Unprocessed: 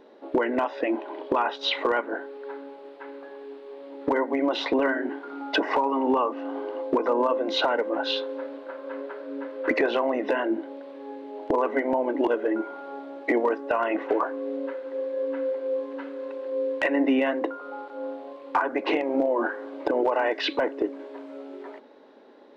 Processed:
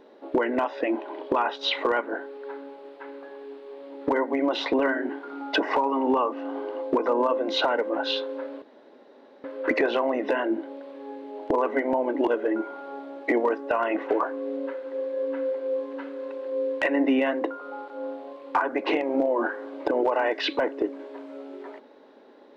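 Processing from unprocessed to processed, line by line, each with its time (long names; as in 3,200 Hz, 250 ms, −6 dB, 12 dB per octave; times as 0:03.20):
0:08.62–0:09.44: fill with room tone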